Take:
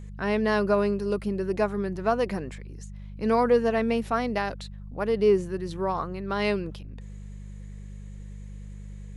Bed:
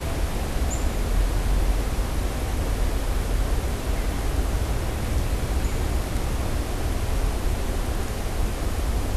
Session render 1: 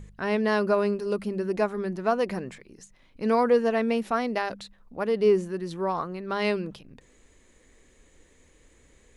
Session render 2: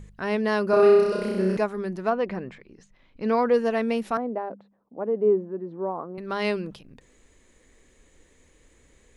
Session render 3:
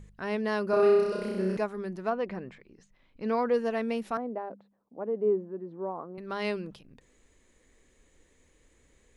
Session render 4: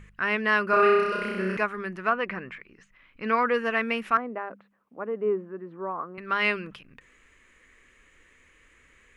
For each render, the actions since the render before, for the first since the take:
de-hum 50 Hz, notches 4
0.7–1.57 flutter echo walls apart 5.5 m, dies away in 1.3 s; 2.09–3.52 LPF 2700 Hz -> 5100 Hz; 4.17–6.18 Butterworth band-pass 420 Hz, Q 0.62
gain -5.5 dB
band shelf 1800 Hz +13.5 dB

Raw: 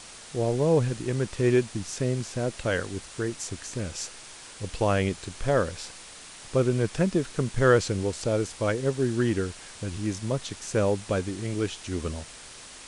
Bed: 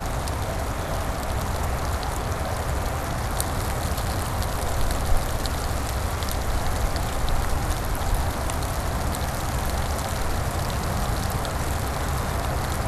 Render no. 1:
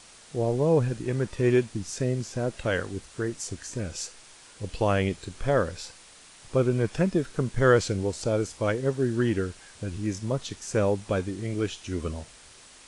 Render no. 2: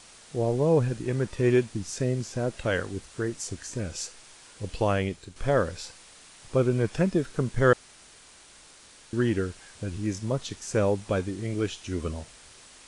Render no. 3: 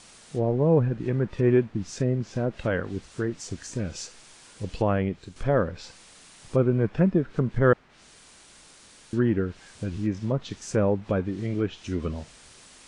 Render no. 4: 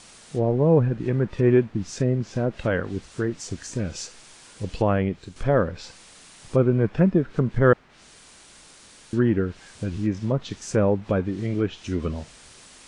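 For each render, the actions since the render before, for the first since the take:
noise print and reduce 6 dB
4.8–5.36 fade out linear, to -8 dB; 7.73–9.13 room tone
treble ducked by the level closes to 1900 Hz, closed at -23 dBFS; bell 190 Hz +4.5 dB 1.2 oct
gain +2.5 dB

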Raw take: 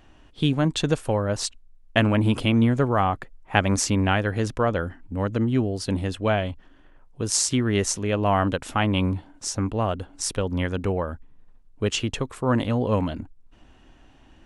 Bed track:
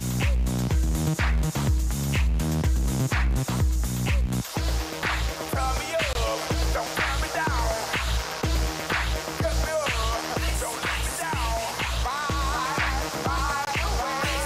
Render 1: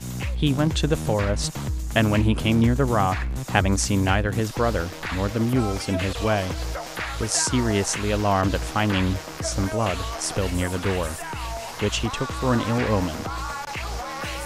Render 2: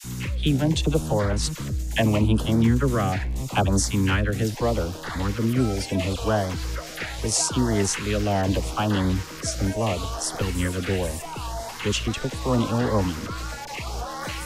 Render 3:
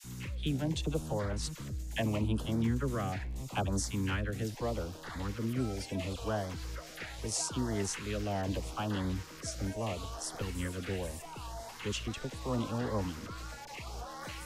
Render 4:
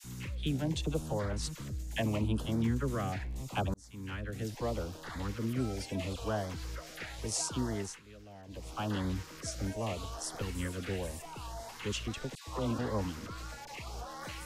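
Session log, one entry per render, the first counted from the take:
add bed track -4.5 dB
LFO notch saw up 0.77 Hz 550–2800 Hz; dispersion lows, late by 40 ms, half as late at 780 Hz
gain -11.5 dB
3.74–4.6 fade in; 7.66–8.84 dip -17 dB, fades 0.36 s; 12.35–12.79 dispersion lows, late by 0.125 s, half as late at 1100 Hz

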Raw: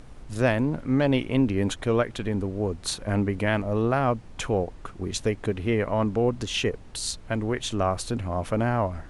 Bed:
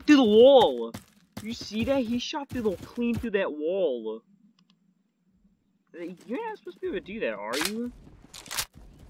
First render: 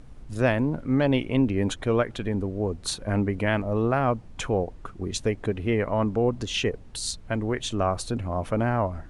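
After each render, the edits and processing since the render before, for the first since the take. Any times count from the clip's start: denoiser 6 dB, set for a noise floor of -44 dBFS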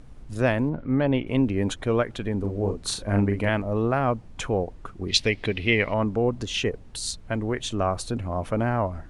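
0.69–1.27 air absorption 220 m; 2.39–3.49 doubler 40 ms -5 dB; 5.08–5.94 band shelf 3200 Hz +13.5 dB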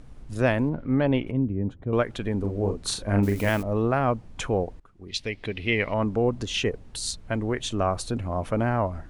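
1.31–1.93 band-pass 120 Hz, Q 0.64; 3.23–3.63 switching spikes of -28 dBFS; 4.8–6.15 fade in, from -21.5 dB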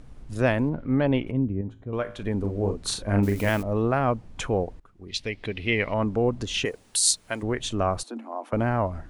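1.61–2.23 resonator 54 Hz, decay 0.52 s; 6.65–7.43 RIAA curve recording; 8.03–8.53 rippled Chebyshev high-pass 220 Hz, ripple 9 dB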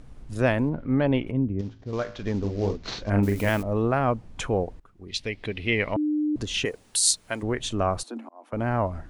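1.59–3.1 CVSD 32 kbps; 5.96–6.36 bleep 301 Hz -21.5 dBFS; 8.29–8.75 fade in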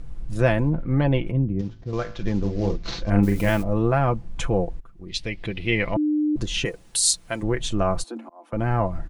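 low shelf 110 Hz +11 dB; comb 5.9 ms, depth 54%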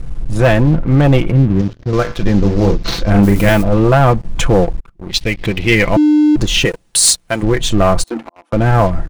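sample leveller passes 3; AGC gain up to 3.5 dB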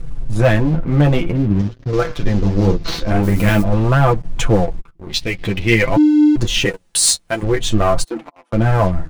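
flange 0.49 Hz, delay 5.8 ms, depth 7.7 ms, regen +15%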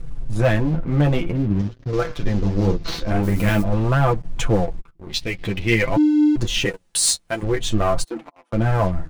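gain -4.5 dB

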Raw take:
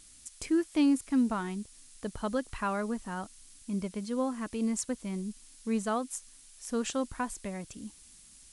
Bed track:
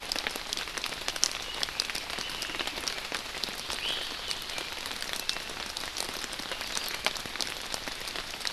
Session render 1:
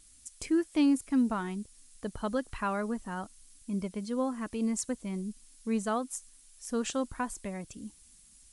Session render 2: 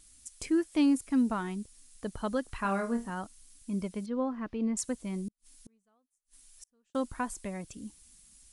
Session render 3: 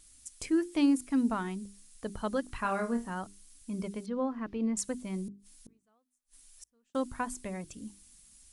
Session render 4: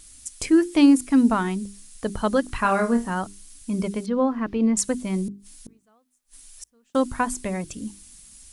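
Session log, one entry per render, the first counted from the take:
denoiser 6 dB, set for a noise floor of -56 dBFS
2.61–3.1 flutter echo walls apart 4.4 m, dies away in 0.24 s; 4.06–4.77 air absorption 280 m; 5.28–6.95 flipped gate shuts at -37 dBFS, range -41 dB
notches 50/100/150/200/250/300/350/400 Hz
gain +10.5 dB

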